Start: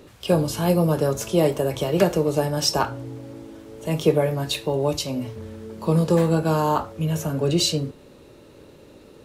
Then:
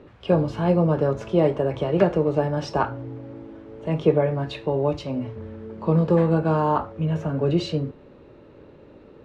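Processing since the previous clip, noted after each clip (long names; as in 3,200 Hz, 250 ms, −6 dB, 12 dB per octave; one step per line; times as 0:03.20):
low-pass filter 2,100 Hz 12 dB per octave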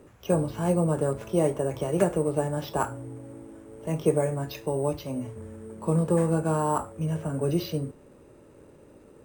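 decimation without filtering 5×
level −4.5 dB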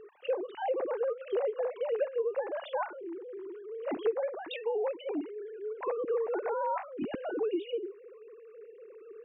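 three sine waves on the formant tracks
downward compressor 3 to 1, threshold −34 dBFS, peak gain reduction 16.5 dB
level +2.5 dB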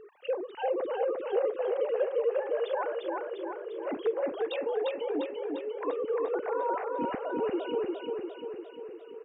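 repeating echo 349 ms, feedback 58%, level −3 dB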